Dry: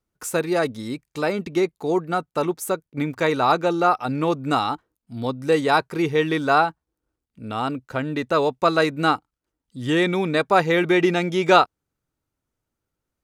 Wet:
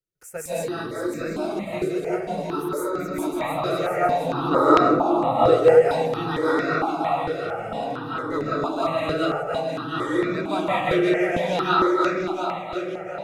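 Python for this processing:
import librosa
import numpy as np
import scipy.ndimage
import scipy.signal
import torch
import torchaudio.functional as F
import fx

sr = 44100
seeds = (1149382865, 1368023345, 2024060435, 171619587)

p1 = fx.reverse_delay_fb(x, sr, ms=355, feedback_pct=62, wet_db=-2.5)
p2 = fx.peak_eq(p1, sr, hz=570.0, db=13.5, octaves=2.2, at=(4.33, 5.54))
p3 = p2 + fx.echo_filtered(p2, sr, ms=764, feedback_pct=80, hz=2000.0, wet_db=-16.0, dry=0)
p4 = fx.rev_freeverb(p3, sr, rt60_s=0.82, hf_ratio=0.35, predelay_ms=120, drr_db=-7.0)
p5 = fx.phaser_held(p4, sr, hz=4.4, low_hz=240.0, high_hz=3100.0)
y = p5 * librosa.db_to_amplitude(-10.5)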